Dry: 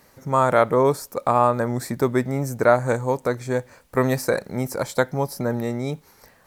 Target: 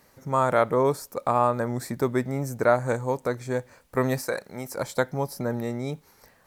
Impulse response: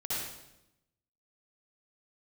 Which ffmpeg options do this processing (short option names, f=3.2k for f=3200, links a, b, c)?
-filter_complex "[0:a]asettb=1/sr,asplit=3[a][b][c];[a]atrim=end=4.214[d];[b]atrim=start=4.21:end=4.77,asetpts=PTS-STARTPTS,afade=t=in:d=0.004:c=qsin,afade=t=out:st=0.556:d=0.004:c=qsin,lowshelf=f=390:g=-9.5[e];[c]atrim=start=4.766[f];[d][e]acrossfade=d=0.004:c1=hsin:c2=qsin[g];[g][f]acrossfade=d=0.004:c1=qsin:c2=hsin,volume=-4dB"